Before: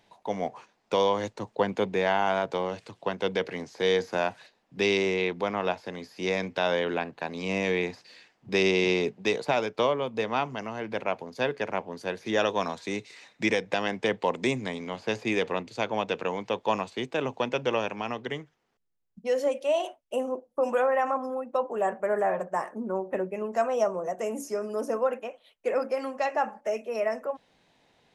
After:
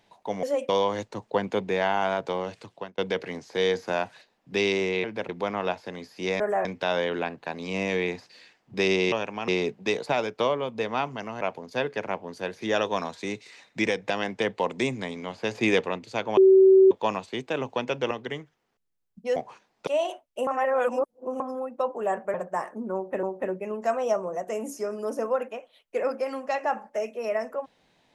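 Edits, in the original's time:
0.43–0.94 s: swap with 19.36–19.62 s
2.90–3.23 s: fade out
10.80–11.05 s: move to 5.29 s
15.19–15.45 s: gain +4.5 dB
16.01–16.55 s: bleep 382 Hz -11.5 dBFS
17.75–18.11 s: move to 8.87 s
20.22–21.15 s: reverse
22.09–22.34 s: move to 6.40 s
22.94–23.23 s: loop, 2 plays

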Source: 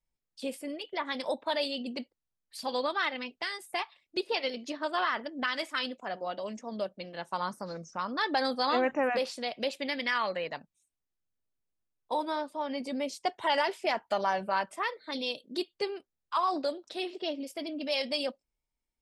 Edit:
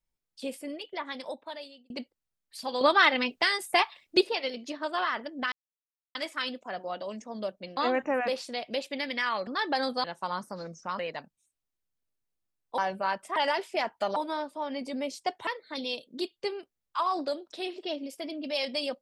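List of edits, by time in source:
0.76–1.90 s: fade out
2.81–4.29 s: gain +9.5 dB
5.52 s: insert silence 0.63 s
7.14–8.09 s: swap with 8.66–10.36 s
12.15–13.46 s: swap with 14.26–14.84 s

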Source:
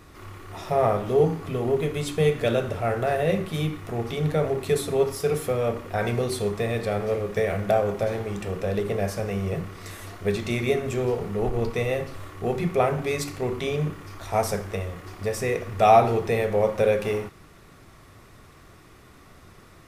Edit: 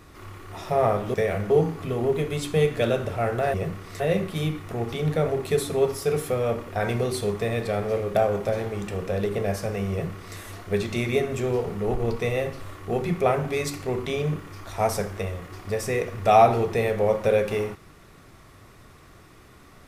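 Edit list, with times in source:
7.33–7.69 s: move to 1.14 s
9.45–9.91 s: copy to 3.18 s

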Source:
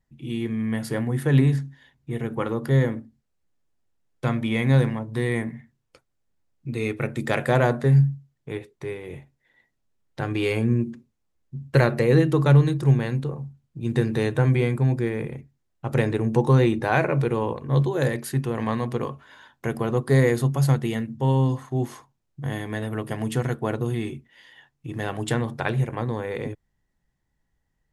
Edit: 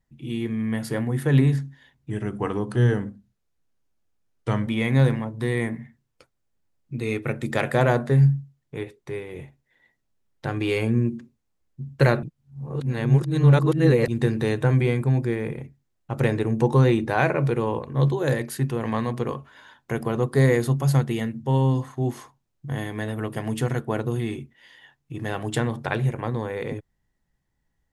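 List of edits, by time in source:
2.10–4.42 s: speed 90%
11.97–13.82 s: reverse

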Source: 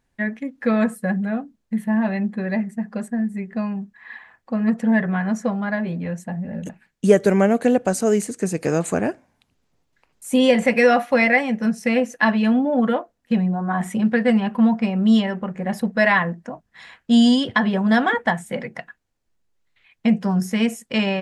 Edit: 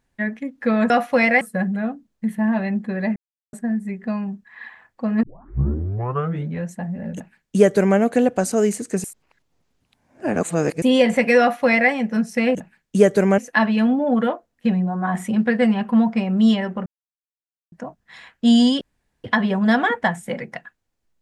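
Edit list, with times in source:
2.65–3.02 s: mute
4.72 s: tape start 1.38 s
6.64–7.47 s: copy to 12.04 s
8.53–10.31 s: reverse
10.89–11.40 s: copy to 0.90 s
15.52–16.38 s: mute
17.47 s: insert room tone 0.43 s

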